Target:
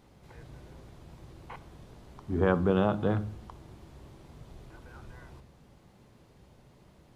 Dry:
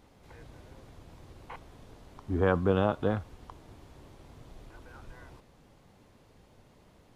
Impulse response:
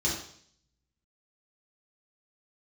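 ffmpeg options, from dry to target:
-filter_complex "[0:a]asplit=2[link_01][link_02];[1:a]atrim=start_sample=2205,lowshelf=frequency=340:gain=10.5[link_03];[link_02][link_03]afir=irnorm=-1:irlink=0,volume=-24.5dB[link_04];[link_01][link_04]amix=inputs=2:normalize=0"

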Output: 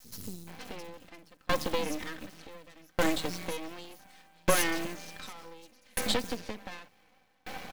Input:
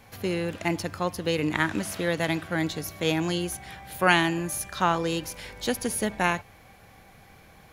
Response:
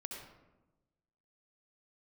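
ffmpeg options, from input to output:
-filter_complex "[0:a]asplit=2[link_01][link_02];[link_02]acontrast=70,volume=3dB[link_03];[link_01][link_03]amix=inputs=2:normalize=0,highshelf=frequency=6900:width_type=q:width=1.5:gain=-9,acrusher=bits=4:mode=log:mix=0:aa=0.000001,aeval=exprs='(tanh(3.55*val(0)+0.55)-tanh(0.55))/3.55':channel_layout=same,highpass=frequency=120:width=0.5412,highpass=frequency=120:width=1.3066,aecho=1:1:3.9:0.66,acompressor=threshold=-25dB:ratio=6,acrossover=split=200|5400[link_04][link_05][link_06];[link_04]adelay=40[link_07];[link_05]adelay=470[link_08];[link_07][link_08][link_06]amix=inputs=3:normalize=0,adynamicequalizer=threshold=0.00708:dfrequency=1100:dqfactor=0.71:tfrequency=1100:tqfactor=0.71:attack=5:release=100:ratio=0.375:range=2:mode=cutabove:tftype=bell,aeval=exprs='max(val(0),0)':channel_layout=same,aeval=exprs='val(0)*pow(10,-34*if(lt(mod(0.67*n/s,1),2*abs(0.67)/1000),1-mod(0.67*n/s,1)/(2*abs(0.67)/1000),(mod(0.67*n/s,1)-2*abs(0.67)/1000)/(1-2*abs(0.67)/1000))/20)':channel_layout=same,volume=8dB"

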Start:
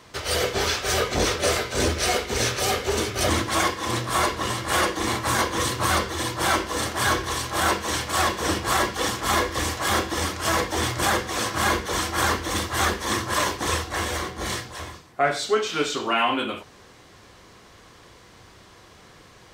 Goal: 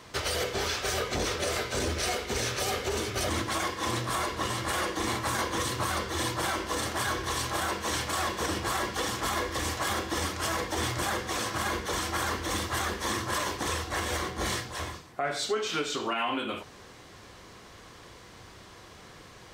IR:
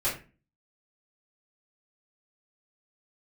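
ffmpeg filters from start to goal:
-af "alimiter=limit=-20dB:level=0:latency=1:release=235"

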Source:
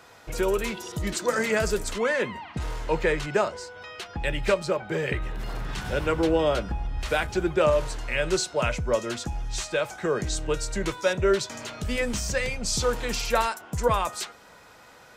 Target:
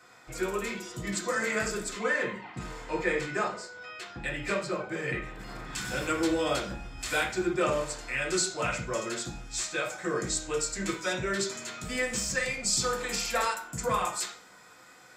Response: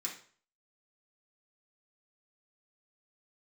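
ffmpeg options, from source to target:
-filter_complex "[0:a]asetnsamples=nb_out_samples=441:pad=0,asendcmd='5.75 highshelf g 9.5;7.23 highshelf g 2',highshelf=frequency=4500:gain=-4[link_01];[1:a]atrim=start_sample=2205[link_02];[link_01][link_02]afir=irnorm=-1:irlink=0,volume=-3dB"

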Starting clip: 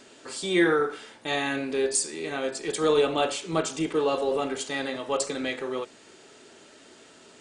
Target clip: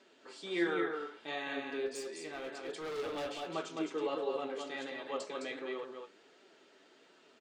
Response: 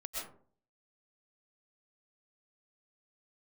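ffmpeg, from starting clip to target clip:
-filter_complex "[0:a]highpass=230,lowpass=4400,asplit=2[link_01][link_02];[link_02]aecho=0:1:211:0.596[link_03];[link_01][link_03]amix=inputs=2:normalize=0,asettb=1/sr,asplit=3[link_04][link_05][link_06];[link_04]atrim=end=1.864[link_07];[link_05]atrim=start=1.86:end=3.54,asetpts=PTS-STARTPTS,afade=type=in:duration=0.004:curve=qsin,afade=type=out:start_time=1.676:duration=0.004:curve=qsin,asoftclip=type=hard:threshold=-25dB[link_08];[link_06]atrim=start=3.536[link_09];[link_07][link_08]acrossfade=duration=0.004:curve1=hsin:curve2=qsin[link_10];[link_10][link_09]acrossfade=duration=0.004:curve1=qsin:curve2=hsin,flanger=delay=5.1:depth=5.4:regen=55:speed=1.4:shape=sinusoidal,volume=-7dB"

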